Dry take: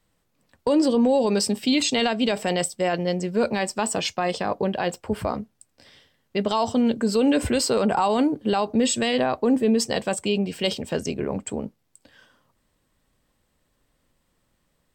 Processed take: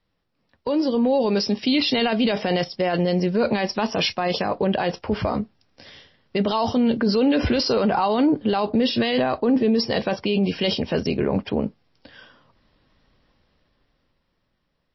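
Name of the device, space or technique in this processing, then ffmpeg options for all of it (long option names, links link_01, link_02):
low-bitrate web radio: -af "dynaudnorm=framelen=100:gausssize=31:maxgain=13dB,alimiter=limit=-9dB:level=0:latency=1:release=12,volume=-3dB" -ar 16000 -c:a libmp3lame -b:a 24k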